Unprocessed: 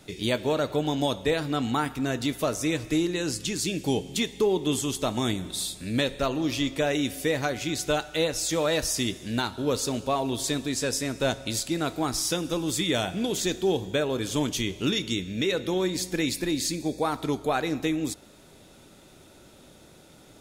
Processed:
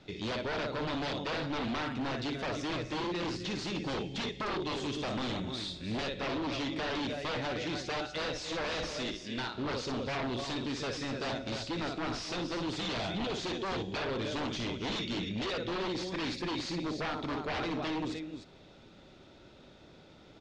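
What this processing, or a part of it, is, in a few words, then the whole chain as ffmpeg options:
synthesiser wavefolder: -filter_complex "[0:a]asettb=1/sr,asplit=3[a][b][c];[a]atrim=end=8.974[d];[b]atrim=start=8.97:end=9.55,asetpts=PTS-STARTPTS,afade=t=in:d=0.004:c=qsin,afade=t=out:st=0.576:d=0.004:c=qsin,highpass=f=330:p=1[e];[c]atrim=start=9.546[f];[d][e]acrossfade=d=0.004:c1=hsin:c2=qsin[g];[g][f]acrossfade=d=0.004:c1=qsin:c2=hsin,aecho=1:1:58|267|303:0.422|0.106|0.299,aeval=exprs='0.0562*(abs(mod(val(0)/0.0562+3,4)-2)-1)':c=same,lowpass=f=4.9k:w=0.5412,lowpass=f=4.9k:w=1.3066,volume=-4dB"

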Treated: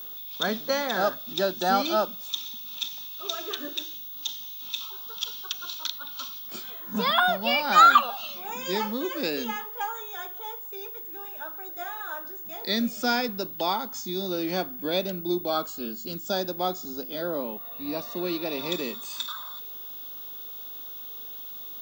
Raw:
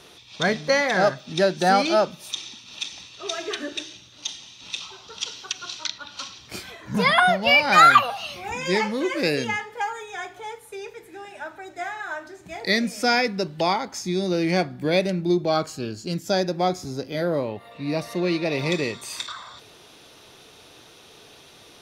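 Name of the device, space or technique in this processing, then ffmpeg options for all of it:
old television with a line whistle: -filter_complex "[0:a]asettb=1/sr,asplit=3[a][b][c];[a]atrim=end=5.124[d];[b]atrim=start=5.12:end=5.54,asetpts=PTS-STARTPTS,afade=t=in:d=0.004:c=qsin,afade=t=out:st=0.416:d=0.004:c=qsin,lowpass=7.5k[e];[c]atrim=start=5.536[f];[d][e]acrossfade=d=0.004:c1=hsin:c2=qsin[g];[g][f]acrossfade=d=0.004:c1=qsin:c2=hsin,highpass=f=200:w=0.5412,highpass=f=200:w=1.3066,equalizer=f=230:t=q:w=4:g=7,equalizer=f=900:t=q:w=4:g=3,equalizer=f=1.3k:t=q:w=4:g=6,equalizer=f=2.1k:t=q:w=4:g=-9,equalizer=f=3.5k:t=q:w=4:g=8,equalizer=f=7.2k:t=q:w=4:g=5,lowpass=f=8.1k:w=0.5412,lowpass=f=8.1k:w=1.3066,aeval=exprs='val(0)+0.0316*sin(2*PI*15625*n/s)':c=same,volume=-6.5dB"

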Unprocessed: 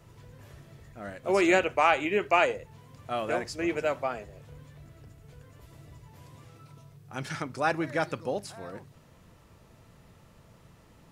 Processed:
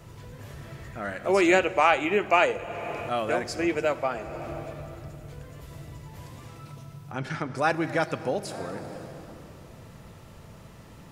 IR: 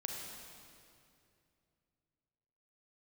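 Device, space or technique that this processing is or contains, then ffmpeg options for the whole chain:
ducked reverb: -filter_complex "[0:a]asettb=1/sr,asplit=3[a][b][c];[a]atrim=end=0.614[d];[b]atrim=start=0.61:end=1.28,asetpts=PTS-STARTPTS,afade=t=in:d=0.004:c=qsin,afade=t=out:st=0.666:d=0.004:c=qsin,equalizer=f=1.6k:w=0.68:g=6[e];[c]atrim=start=1.276[f];[d][e]acrossfade=d=0.004:c1=hsin:c2=qsin[g];[g][f]acrossfade=d=0.004:c1=qsin:c2=hsin,asplit=3[h][i][j];[h]afade=t=out:st=7.11:d=0.02[k];[i]lowpass=f=2.2k:p=1,afade=t=in:st=7.11:d=0.02,afade=t=out:st=7.55:d=0.02[l];[j]afade=t=in:st=7.55:d=0.02[m];[k][l][m]amix=inputs=3:normalize=0,asplit=3[n][o][p];[1:a]atrim=start_sample=2205[q];[o][q]afir=irnorm=-1:irlink=0[r];[p]apad=whole_len=490363[s];[r][s]sidechaincompress=threshold=-41dB:ratio=4:attack=6.2:release=331,volume=2dB[t];[n][t]amix=inputs=2:normalize=0,volume=1.5dB"

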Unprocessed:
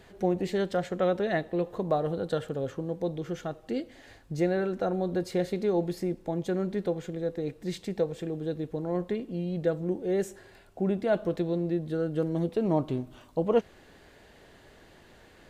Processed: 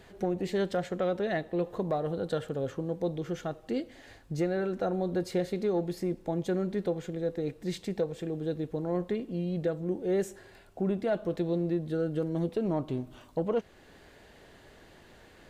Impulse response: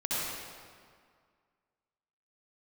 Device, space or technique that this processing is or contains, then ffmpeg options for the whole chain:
soft clipper into limiter: -af "asoftclip=type=tanh:threshold=-14.5dB,alimiter=limit=-20.5dB:level=0:latency=1:release=395"

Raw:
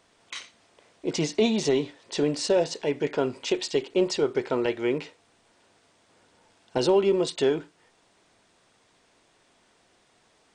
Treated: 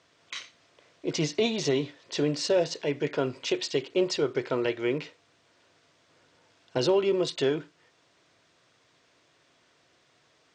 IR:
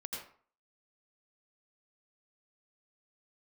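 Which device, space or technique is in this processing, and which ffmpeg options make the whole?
car door speaker: -af "highpass=81,equalizer=f=140:t=q:w=4:g=4,equalizer=f=210:t=q:w=4:g=-9,equalizer=f=410:t=q:w=4:g=-3,equalizer=f=830:t=q:w=4:g=-7,lowpass=f=6.9k:w=0.5412,lowpass=f=6.9k:w=1.3066"

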